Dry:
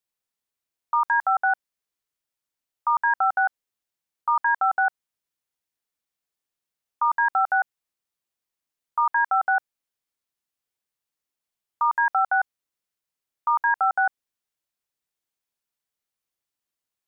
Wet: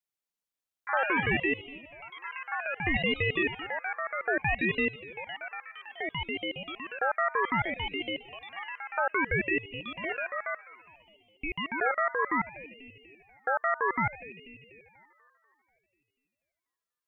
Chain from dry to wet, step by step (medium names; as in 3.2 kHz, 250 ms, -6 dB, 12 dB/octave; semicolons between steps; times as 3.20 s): feedback echo behind a high-pass 244 ms, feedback 57%, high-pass 1.5 kHz, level -12 dB; ever faster or slower copies 106 ms, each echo +3 st, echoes 3, each echo -6 dB; ring modulator with a swept carrier 750 Hz, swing 65%, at 0.62 Hz; trim -3.5 dB